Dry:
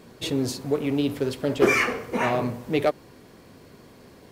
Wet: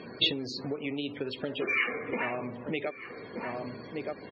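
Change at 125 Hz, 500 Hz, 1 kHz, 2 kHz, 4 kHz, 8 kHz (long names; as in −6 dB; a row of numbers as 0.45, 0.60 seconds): −11.0 dB, −9.5 dB, −9.5 dB, −4.5 dB, +2.5 dB, below −15 dB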